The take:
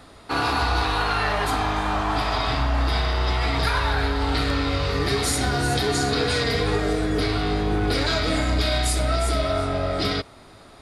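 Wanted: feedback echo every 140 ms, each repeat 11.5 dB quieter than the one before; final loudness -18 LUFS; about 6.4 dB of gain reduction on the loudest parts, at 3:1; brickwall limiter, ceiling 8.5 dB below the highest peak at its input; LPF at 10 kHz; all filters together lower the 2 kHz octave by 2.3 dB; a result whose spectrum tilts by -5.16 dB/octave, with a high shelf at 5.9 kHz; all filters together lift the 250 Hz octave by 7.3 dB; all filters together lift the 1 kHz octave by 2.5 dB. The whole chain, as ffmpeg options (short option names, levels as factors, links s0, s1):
-af "lowpass=10000,equalizer=f=250:t=o:g=9,equalizer=f=1000:t=o:g=4,equalizer=f=2000:t=o:g=-5.5,highshelf=f=5900:g=3.5,acompressor=threshold=0.0631:ratio=3,alimiter=limit=0.0841:level=0:latency=1,aecho=1:1:140|280|420:0.266|0.0718|0.0194,volume=3.98"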